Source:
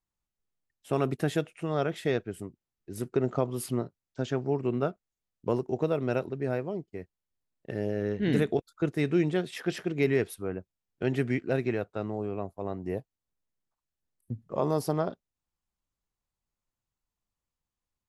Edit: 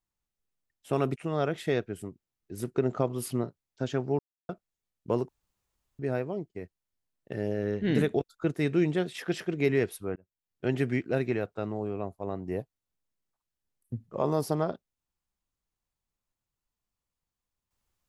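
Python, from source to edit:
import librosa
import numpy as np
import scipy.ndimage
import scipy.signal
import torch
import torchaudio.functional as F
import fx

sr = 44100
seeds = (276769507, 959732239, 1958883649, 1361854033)

y = fx.edit(x, sr, fx.cut(start_s=1.16, length_s=0.38),
    fx.silence(start_s=4.57, length_s=0.3),
    fx.room_tone_fill(start_s=5.67, length_s=0.7),
    fx.fade_in_span(start_s=10.54, length_s=0.51), tone=tone)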